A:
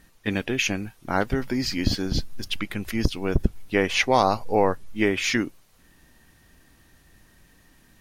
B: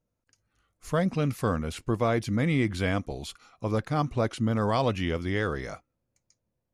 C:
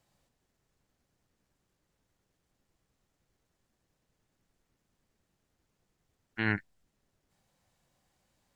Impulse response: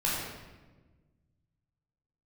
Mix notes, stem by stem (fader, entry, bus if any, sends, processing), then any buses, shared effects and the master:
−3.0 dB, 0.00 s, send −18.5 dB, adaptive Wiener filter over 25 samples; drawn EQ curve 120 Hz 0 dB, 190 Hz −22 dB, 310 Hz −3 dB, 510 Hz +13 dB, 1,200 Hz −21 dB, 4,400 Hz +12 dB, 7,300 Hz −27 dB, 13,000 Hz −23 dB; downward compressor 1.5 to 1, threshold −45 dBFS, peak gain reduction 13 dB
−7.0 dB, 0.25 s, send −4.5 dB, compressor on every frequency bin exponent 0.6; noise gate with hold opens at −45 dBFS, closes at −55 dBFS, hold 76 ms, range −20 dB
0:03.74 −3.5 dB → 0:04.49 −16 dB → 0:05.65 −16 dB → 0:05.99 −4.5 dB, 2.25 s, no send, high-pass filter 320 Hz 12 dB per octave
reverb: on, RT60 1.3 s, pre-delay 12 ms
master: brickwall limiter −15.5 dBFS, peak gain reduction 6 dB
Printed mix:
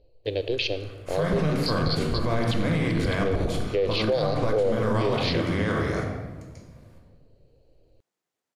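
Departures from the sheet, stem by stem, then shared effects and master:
stem A: missing downward compressor 1.5 to 1, threshold −45 dBFS, peak gain reduction 13 dB
stem B: missing noise gate with hold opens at −45 dBFS, closes at −55 dBFS, hold 76 ms, range −20 dB

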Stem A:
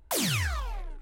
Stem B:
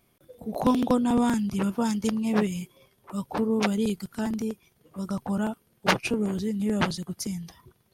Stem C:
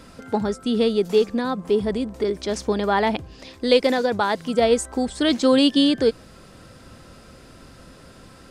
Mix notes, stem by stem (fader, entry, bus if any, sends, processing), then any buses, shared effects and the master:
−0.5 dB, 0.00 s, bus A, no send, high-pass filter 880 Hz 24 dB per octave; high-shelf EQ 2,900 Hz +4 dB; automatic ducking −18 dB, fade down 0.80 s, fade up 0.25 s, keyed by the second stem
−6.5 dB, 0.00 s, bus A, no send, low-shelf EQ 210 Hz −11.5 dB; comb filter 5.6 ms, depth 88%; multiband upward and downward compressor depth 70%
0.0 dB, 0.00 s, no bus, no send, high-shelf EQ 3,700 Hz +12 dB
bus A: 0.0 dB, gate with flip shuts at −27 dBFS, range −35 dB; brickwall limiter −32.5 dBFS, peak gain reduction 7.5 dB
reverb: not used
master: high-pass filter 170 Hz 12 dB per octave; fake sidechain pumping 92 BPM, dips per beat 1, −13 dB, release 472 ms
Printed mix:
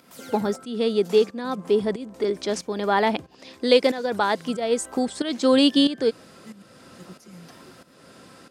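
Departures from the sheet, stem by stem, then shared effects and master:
stem A −0.5 dB → −12.0 dB
stem C: missing high-shelf EQ 3,700 Hz +12 dB

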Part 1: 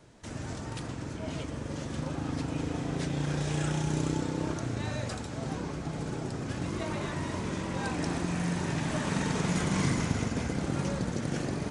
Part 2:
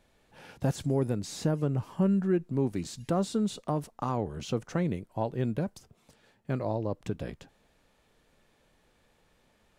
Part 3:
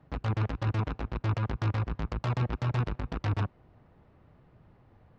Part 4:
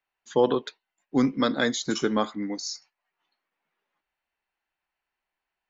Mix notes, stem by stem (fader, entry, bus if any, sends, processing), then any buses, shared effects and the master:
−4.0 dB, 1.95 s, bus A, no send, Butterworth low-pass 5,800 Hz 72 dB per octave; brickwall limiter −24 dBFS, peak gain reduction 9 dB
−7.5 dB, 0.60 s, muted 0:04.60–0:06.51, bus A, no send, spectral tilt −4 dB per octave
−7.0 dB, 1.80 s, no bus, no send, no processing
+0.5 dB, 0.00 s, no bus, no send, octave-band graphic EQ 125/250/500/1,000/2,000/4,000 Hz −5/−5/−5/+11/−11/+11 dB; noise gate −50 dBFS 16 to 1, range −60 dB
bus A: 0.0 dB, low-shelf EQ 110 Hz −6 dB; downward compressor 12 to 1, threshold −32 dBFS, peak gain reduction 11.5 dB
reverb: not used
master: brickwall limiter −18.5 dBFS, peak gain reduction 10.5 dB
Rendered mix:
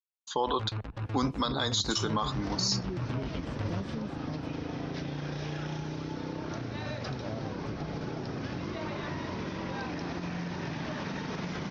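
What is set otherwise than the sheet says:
stem 1 −4.0 dB → +7.0 dB
stem 3: entry 1.80 s → 0.35 s

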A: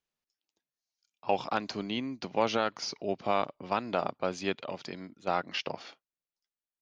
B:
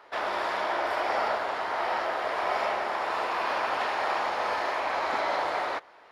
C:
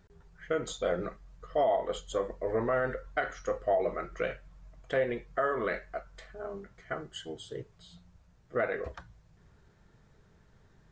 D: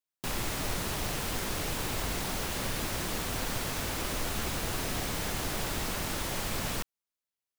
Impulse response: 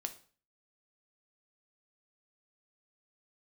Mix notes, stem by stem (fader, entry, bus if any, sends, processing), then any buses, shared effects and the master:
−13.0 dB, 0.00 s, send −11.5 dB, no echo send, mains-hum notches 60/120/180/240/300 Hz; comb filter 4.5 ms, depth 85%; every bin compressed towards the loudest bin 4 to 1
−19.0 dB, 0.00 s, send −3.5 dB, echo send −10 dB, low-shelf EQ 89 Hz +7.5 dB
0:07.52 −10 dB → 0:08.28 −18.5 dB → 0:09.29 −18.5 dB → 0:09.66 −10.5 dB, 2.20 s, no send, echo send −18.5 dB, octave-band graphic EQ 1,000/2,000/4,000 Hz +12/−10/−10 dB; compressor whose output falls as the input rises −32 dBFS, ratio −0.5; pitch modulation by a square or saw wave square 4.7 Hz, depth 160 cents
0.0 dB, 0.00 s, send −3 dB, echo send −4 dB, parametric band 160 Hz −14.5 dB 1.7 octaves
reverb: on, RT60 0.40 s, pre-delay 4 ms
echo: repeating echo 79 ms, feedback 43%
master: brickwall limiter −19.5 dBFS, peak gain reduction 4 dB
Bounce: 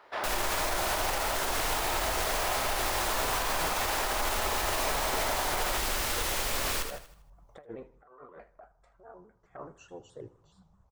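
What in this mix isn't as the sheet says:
stem A: muted
stem B −19.0 dB → −7.0 dB
stem C: entry 2.20 s → 2.65 s

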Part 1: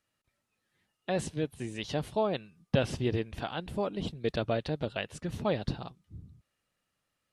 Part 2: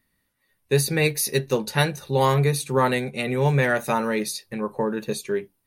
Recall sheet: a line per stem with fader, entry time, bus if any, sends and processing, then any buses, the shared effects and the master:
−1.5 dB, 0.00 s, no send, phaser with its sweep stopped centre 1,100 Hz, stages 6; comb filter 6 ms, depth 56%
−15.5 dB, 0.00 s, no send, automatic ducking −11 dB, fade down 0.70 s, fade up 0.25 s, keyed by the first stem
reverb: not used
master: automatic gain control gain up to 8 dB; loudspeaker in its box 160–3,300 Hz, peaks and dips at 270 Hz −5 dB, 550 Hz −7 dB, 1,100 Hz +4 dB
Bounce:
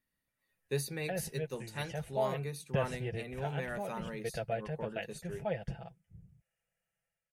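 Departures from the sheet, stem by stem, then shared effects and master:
stem 1 −1.5 dB → −12.5 dB
master: missing loudspeaker in its box 160–3,300 Hz, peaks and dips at 270 Hz −5 dB, 550 Hz −7 dB, 1,100 Hz +4 dB

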